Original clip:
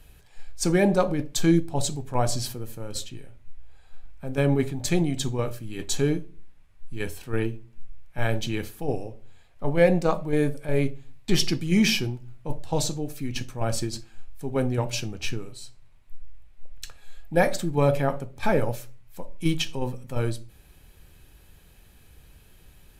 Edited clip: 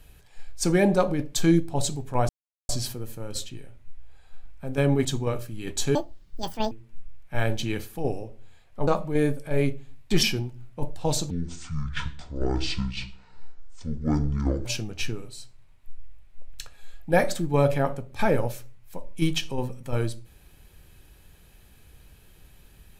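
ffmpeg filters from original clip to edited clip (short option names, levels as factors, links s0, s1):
-filter_complex "[0:a]asplit=9[s0][s1][s2][s3][s4][s5][s6][s7][s8];[s0]atrim=end=2.29,asetpts=PTS-STARTPTS,afade=t=out:st=2.286:d=0.004:c=hsin,apad=pad_dur=0.4[s9];[s1]atrim=start=2.29:end=4.652,asetpts=PTS-STARTPTS,afade=t=in:d=0.004:c=hsin[s10];[s2]atrim=start=5.168:end=6.074[s11];[s3]atrim=start=6.07:end=7.55,asetpts=PTS-STARTPTS,asetrate=85554,aresample=44100,atrim=end_sample=33643,asetpts=PTS-STARTPTS[s12];[s4]atrim=start=7.546:end=9.712[s13];[s5]atrim=start=10.048:end=11.412[s14];[s6]atrim=start=11.908:end=12.984[s15];[s7]atrim=start=12.98:end=14.89,asetpts=PTS-STARTPTS,asetrate=25137,aresample=44100[s16];[s8]atrim=start=14.886[s17];[s9][s10]concat=n=2:v=0:a=1[s18];[s18][s11]acrossfade=d=0.004:c1=hsin:c2=hsin[s19];[s19][s12]acrossfade=d=0.004:c1=hsin:c2=hsin[s20];[s20][s13]acrossfade=d=0.004:c1=hsin:c2=hsin[s21];[s21][s14]acrossfade=d=0.004:c1=hsin:c2=hsin[s22];[s22][s15]acrossfade=d=0.004:c1=hsin:c2=hsin[s23];[s23][s16]acrossfade=d=0.004:c1=hsin:c2=hsin[s24];[s24][s17]acrossfade=d=0.004:c1=hsin:c2=hsin"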